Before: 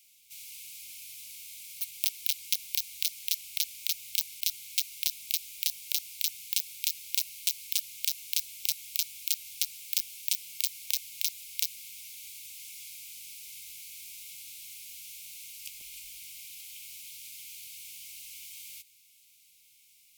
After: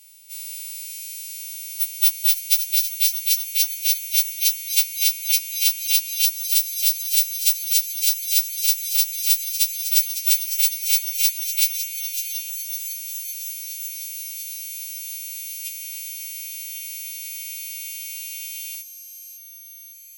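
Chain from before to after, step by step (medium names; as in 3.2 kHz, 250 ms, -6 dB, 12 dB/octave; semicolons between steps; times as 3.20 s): partials quantised in pitch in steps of 2 st; feedback echo behind a high-pass 555 ms, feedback 69%, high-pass 3.1 kHz, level -9 dB; LFO high-pass saw up 0.16 Hz 720–2600 Hz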